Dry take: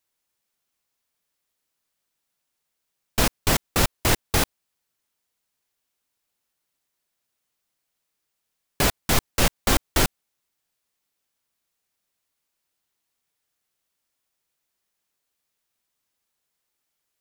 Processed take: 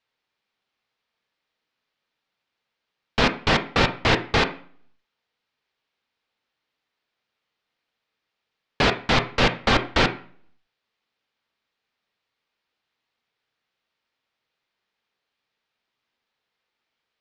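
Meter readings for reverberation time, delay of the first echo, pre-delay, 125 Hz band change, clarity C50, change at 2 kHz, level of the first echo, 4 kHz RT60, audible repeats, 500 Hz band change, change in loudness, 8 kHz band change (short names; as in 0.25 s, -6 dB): 0.45 s, none, 3 ms, 0.0 dB, 13.5 dB, +5.0 dB, none, 0.45 s, none, +4.0 dB, +1.5 dB, -13.5 dB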